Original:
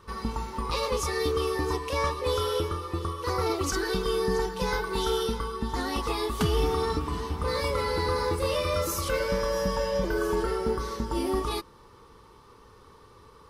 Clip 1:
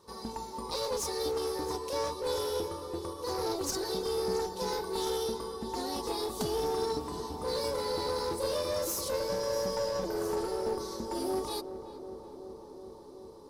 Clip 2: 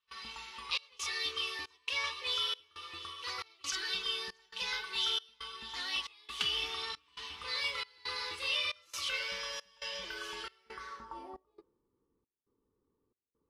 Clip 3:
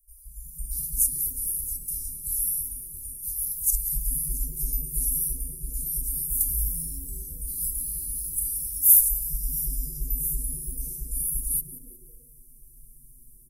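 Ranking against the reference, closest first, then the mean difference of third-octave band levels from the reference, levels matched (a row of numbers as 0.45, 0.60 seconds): 1, 2, 3; 4.5, 13.0, 23.5 decibels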